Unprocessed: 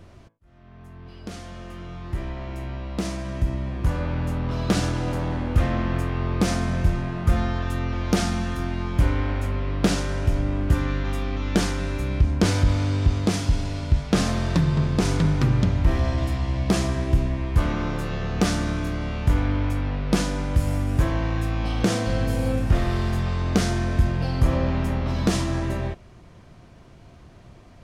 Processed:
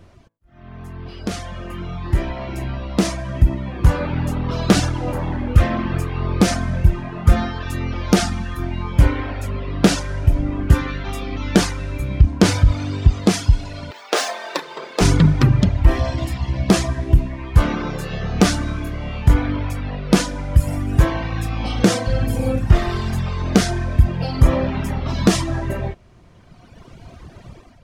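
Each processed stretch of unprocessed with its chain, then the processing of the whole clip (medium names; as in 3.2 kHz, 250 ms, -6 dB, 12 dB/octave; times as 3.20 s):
13.91–15.01 s: median filter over 3 samples + high-pass 420 Hz 24 dB/octave + doubling 33 ms -11.5 dB
whole clip: reverb removal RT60 2 s; level rider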